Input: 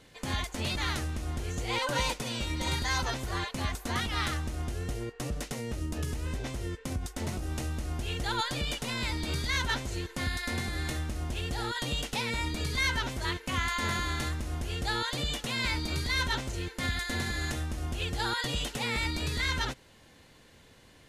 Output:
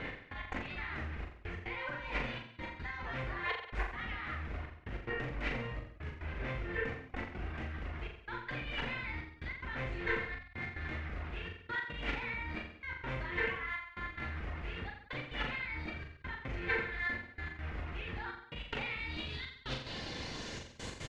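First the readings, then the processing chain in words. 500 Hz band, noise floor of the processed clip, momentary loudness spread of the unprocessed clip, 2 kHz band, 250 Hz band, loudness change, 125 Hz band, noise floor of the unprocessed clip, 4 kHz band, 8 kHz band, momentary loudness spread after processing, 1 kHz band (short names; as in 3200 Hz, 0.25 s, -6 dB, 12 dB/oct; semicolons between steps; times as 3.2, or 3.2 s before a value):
-5.0 dB, -55 dBFS, 6 LU, -3.5 dB, -8.5 dB, -7.5 dB, -9.5 dB, -57 dBFS, -13.0 dB, under -20 dB, 9 LU, -8.0 dB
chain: in parallel at -5 dB: wrapped overs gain 33 dB; on the sum: negative-ratio compressor -42 dBFS, ratio -1; high shelf 7000 Hz -9.5 dB; step gate "x..x.xxxxxx" 145 bpm -60 dB; reverb removal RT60 0.75 s; low-pass sweep 2100 Hz -> 7400 Hz, 18.43–20.87; on a send: reverse bouncing-ball echo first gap 40 ms, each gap 1.1×, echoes 5; on the sum: gain +1 dB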